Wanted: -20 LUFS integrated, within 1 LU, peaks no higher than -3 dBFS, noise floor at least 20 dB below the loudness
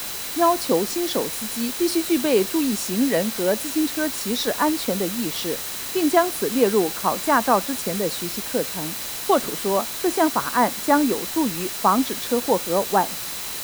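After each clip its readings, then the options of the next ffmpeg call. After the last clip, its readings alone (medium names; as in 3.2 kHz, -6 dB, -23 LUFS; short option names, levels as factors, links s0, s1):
steady tone 4 kHz; tone level -41 dBFS; noise floor -31 dBFS; noise floor target -42 dBFS; loudness -22.0 LUFS; peak level -4.5 dBFS; loudness target -20.0 LUFS
-> -af "bandreject=f=4000:w=30"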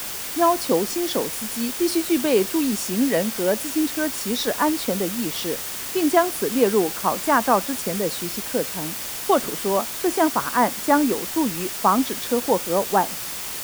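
steady tone not found; noise floor -31 dBFS; noise floor target -42 dBFS
-> -af "afftdn=nr=11:nf=-31"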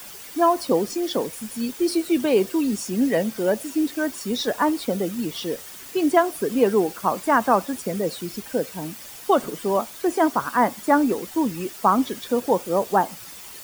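noise floor -40 dBFS; noise floor target -43 dBFS
-> -af "afftdn=nr=6:nf=-40"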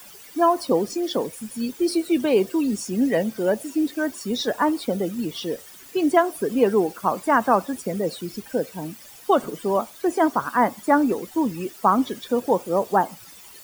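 noise floor -45 dBFS; loudness -23.0 LUFS; peak level -4.5 dBFS; loudness target -20.0 LUFS
-> -af "volume=1.41,alimiter=limit=0.708:level=0:latency=1"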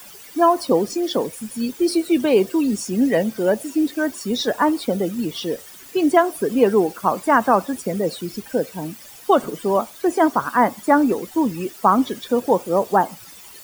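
loudness -20.0 LUFS; peak level -3.0 dBFS; noise floor -42 dBFS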